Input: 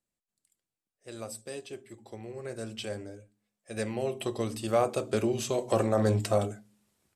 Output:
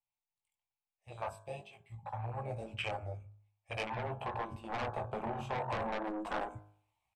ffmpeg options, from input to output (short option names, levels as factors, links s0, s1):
-filter_complex "[0:a]bandreject=f=950:w=21,acrossover=split=480|3000[s0][s1][s2];[s1]acompressor=threshold=0.0112:ratio=5[s3];[s0][s3][s2]amix=inputs=3:normalize=0,firequalizer=gain_entry='entry(100,0);entry(290,-26);entry(870,14);entry(1500,-14);entry(2300,6);entry(4700,-11)':delay=0.05:min_phase=1,flanger=delay=16.5:depth=6.1:speed=0.45,asettb=1/sr,asplit=3[s4][s5][s6];[s4]atrim=end=3.954[s7];[s5]atrim=start=3.95:end=6.26,asetpts=PTS-STARTPTS,afade=t=in:d=0.004:c=qsin,afade=t=out:st=2.306:d=0.004:c=qsin,highshelf=f=2200:g=-9[s8];[s6]atrim=start=6.256[s9];[s7][s8]acrossfade=d=0.004:c1=hsin:c2=qsin[s10];[s10][s9]acrossfade=d=0.004:c1=qsin:c2=hsin,afwtdn=0.00631,asoftclip=type=tanh:threshold=0.01,afftfilt=real='re*lt(hypot(re,im),0.0355)':imag='im*lt(hypot(re,im),0.0355)':win_size=1024:overlap=0.75,bandreject=f=51.51:t=h:w=4,bandreject=f=103.02:t=h:w=4,bandreject=f=154.53:t=h:w=4,bandreject=f=206.04:t=h:w=4,bandreject=f=257.55:t=h:w=4,bandreject=f=309.06:t=h:w=4,bandreject=f=360.57:t=h:w=4,bandreject=f=412.08:t=h:w=4,bandreject=f=463.59:t=h:w=4,bandreject=f=515.1:t=h:w=4,bandreject=f=566.61:t=h:w=4,bandreject=f=618.12:t=h:w=4,bandreject=f=669.63:t=h:w=4,bandreject=f=721.14:t=h:w=4,bandreject=f=772.65:t=h:w=4,bandreject=f=824.16:t=h:w=4,bandreject=f=875.67:t=h:w=4,bandreject=f=927.18:t=h:w=4,bandreject=f=978.69:t=h:w=4,bandreject=f=1030.2:t=h:w=4,bandreject=f=1081.71:t=h:w=4,bandreject=f=1133.22:t=h:w=4,bandreject=f=1184.73:t=h:w=4,bandreject=f=1236.24:t=h:w=4,bandreject=f=1287.75:t=h:w=4,bandreject=f=1339.26:t=h:w=4,bandreject=f=1390.77:t=h:w=4,bandreject=f=1442.28:t=h:w=4,bandreject=f=1493.79:t=h:w=4,bandreject=f=1545.3:t=h:w=4,bandreject=f=1596.81:t=h:w=4,bandreject=f=1648.32:t=h:w=4,bandreject=f=1699.83:t=h:w=4,volume=4.22"